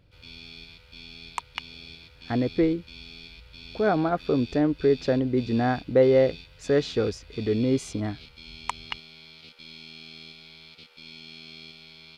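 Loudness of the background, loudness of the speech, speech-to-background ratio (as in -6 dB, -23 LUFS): -44.0 LUFS, -25.0 LUFS, 19.0 dB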